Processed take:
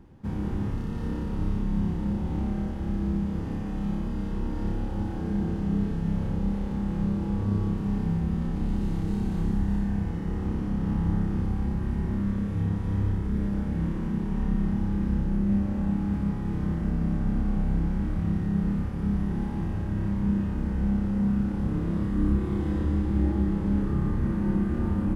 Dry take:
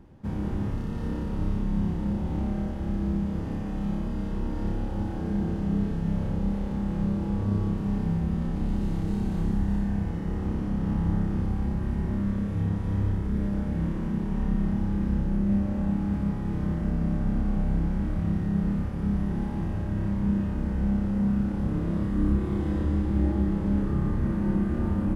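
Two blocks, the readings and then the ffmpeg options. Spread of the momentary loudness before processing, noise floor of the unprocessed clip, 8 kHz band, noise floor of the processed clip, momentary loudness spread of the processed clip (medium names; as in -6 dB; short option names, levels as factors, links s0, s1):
5 LU, -31 dBFS, no reading, -31 dBFS, 5 LU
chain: -af "equalizer=f=610:w=5.1:g=-5"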